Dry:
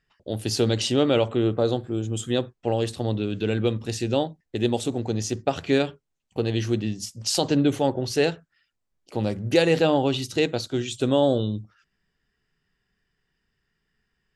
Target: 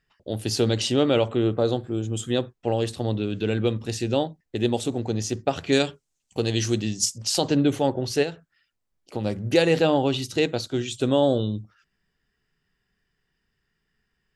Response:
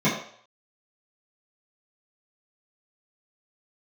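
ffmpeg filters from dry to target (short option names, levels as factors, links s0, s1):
-filter_complex "[0:a]asettb=1/sr,asplit=3[s0][s1][s2];[s0]atrim=end=5.724[s3];[s1]atrim=start=5.72:end=7.18,asetpts=PTS-STARTPTS,afade=t=in:d=0.004:c=qsin,afade=t=out:st=1.456:d=0.004:c=qsin,equalizer=f=7200:w=0.7:g=13[s4];[s2]atrim=start=7.176[s5];[s3][s4]acrossfade=d=0.004:c1=hsin:c2=qsin[s6];[s6][s5]acrossfade=d=0.004:c1=qsin:c2=hsin,asplit=3[s7][s8][s9];[s7]afade=t=out:st=8.22:d=0.02[s10];[s8]acompressor=threshold=0.0631:ratio=6,afade=t=in:st=8.22:d=0.02,afade=t=out:st=9.24:d=0.02[s11];[s9]afade=t=in:st=9.24:d=0.02[s12];[s10][s11][s12]amix=inputs=3:normalize=0"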